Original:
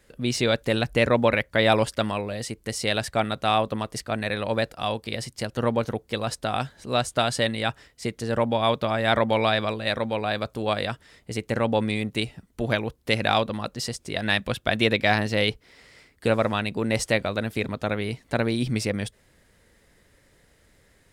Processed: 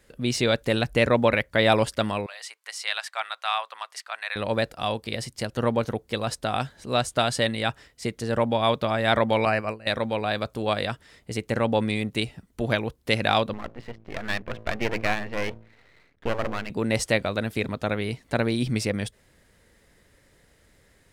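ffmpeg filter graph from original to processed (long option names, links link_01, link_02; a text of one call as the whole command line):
ffmpeg -i in.wav -filter_complex "[0:a]asettb=1/sr,asplit=3[link_01][link_02][link_03];[link_01]atrim=end=2.264[link_04];[link_02]atrim=start=2.26:end=4.36,asetpts=PTS-STARTPTS,afade=type=in:duration=0.004:curve=qsin,afade=type=out:start_time=2.096:duration=0.004:curve=qsin,highpass=frequency=920:width=0.5412,highpass=frequency=920:width=1.3066,highshelf=frequency=6600:gain=-8.5[link_05];[link_03]atrim=start=4.356[link_06];[link_04][link_05]acrossfade=duration=0.004:curve1=hsin:curve2=qsin[link_07];[link_07][link_06]acrossfade=duration=0.004:curve1=qsin:curve2=hsin,asettb=1/sr,asplit=3[link_08][link_09][link_10];[link_08]atrim=end=9.454[link_11];[link_09]atrim=start=9.45:end=9.87,asetpts=PTS-STARTPTS,afade=type=in:duration=0.004:curve=qsin,afade=type=out:start_time=0.416:duration=0.004:curve=qsin,asuperstop=centerf=3500:order=8:qfactor=2.8,agate=range=-33dB:threshold=-24dB:ratio=3:release=100:detection=peak[link_12];[link_10]atrim=start=9.866[link_13];[link_11][link_12]acrossfade=duration=0.004:curve1=hsin:curve2=qsin[link_14];[link_14][link_13]acrossfade=duration=0.004:curve1=qsin:curve2=hsin,asettb=1/sr,asplit=3[link_15][link_16][link_17];[link_15]atrim=end=13.534[link_18];[link_16]atrim=start=13.53:end=16.7,asetpts=PTS-STARTPTS,afade=type=in:duration=0.004:curve=qsin,afade=type=out:start_time=3.166:duration=0.004:curve=qsin,lowpass=frequency=2500:width=0.5412,lowpass=frequency=2500:width=1.3066,bandreject=frequency=55.38:width_type=h:width=4,bandreject=frequency=110.76:width_type=h:width=4,bandreject=frequency=166.14:width_type=h:width=4,bandreject=frequency=221.52:width_type=h:width=4,bandreject=frequency=276.9:width_type=h:width=4,bandreject=frequency=332.28:width_type=h:width=4,bandreject=frequency=387.66:width_type=h:width=4,bandreject=frequency=443.04:width_type=h:width=4,bandreject=frequency=498.42:width_type=h:width=4,bandreject=frequency=553.8:width_type=h:width=4,aeval=exprs='max(val(0),0)':channel_layout=same[link_19];[link_17]atrim=start=16.696[link_20];[link_18][link_19]acrossfade=duration=0.004:curve1=hsin:curve2=qsin[link_21];[link_21][link_20]acrossfade=duration=0.004:curve1=qsin:curve2=hsin" out.wav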